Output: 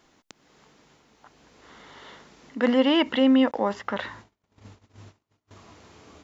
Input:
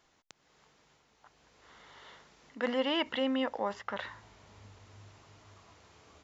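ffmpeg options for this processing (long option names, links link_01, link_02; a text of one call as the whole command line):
ffmpeg -i in.wav -filter_complex "[0:a]asettb=1/sr,asplit=3[link_01][link_02][link_03];[link_01]atrim=end=3.514[link_04];[link_02]atrim=start=3.51:end=5.51,asetpts=PTS-STARTPTS,afade=type=in:duration=0.004:curve=qsin,afade=type=out:start_time=1.996:duration=0.004:curve=qsin,agate=range=-35dB:threshold=-53dB:ratio=16:detection=peak[link_05];[link_03]atrim=start=5.506[link_06];[link_04][link_05]acrossfade=duration=0.004:curve1=hsin:curve2=qsin[link_07];[link_07][link_06]acrossfade=duration=0.004:curve1=qsin:curve2=hsin,equalizer=frequency=260:width_type=o:width=1.3:gain=7.5,volume=6.5dB" out.wav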